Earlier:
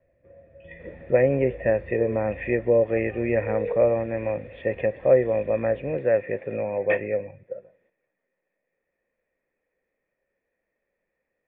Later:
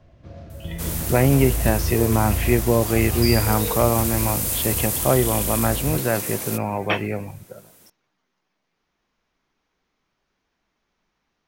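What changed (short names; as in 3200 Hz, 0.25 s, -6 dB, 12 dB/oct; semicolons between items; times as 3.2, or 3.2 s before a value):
speech -9.0 dB; master: remove vocal tract filter e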